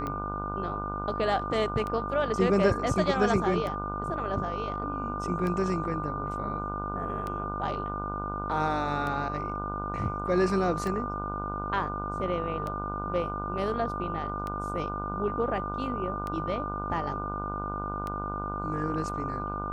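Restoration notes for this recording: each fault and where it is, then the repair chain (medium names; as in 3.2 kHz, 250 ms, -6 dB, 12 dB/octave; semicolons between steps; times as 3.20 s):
buzz 50 Hz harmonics 30 -36 dBFS
tick 33 1/3 rpm -21 dBFS
whine 1.2 kHz -34 dBFS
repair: de-click; de-hum 50 Hz, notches 30; band-stop 1.2 kHz, Q 30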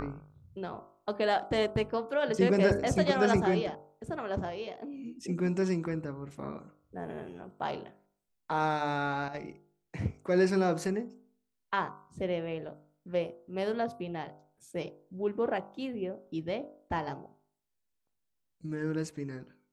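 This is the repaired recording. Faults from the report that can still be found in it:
nothing left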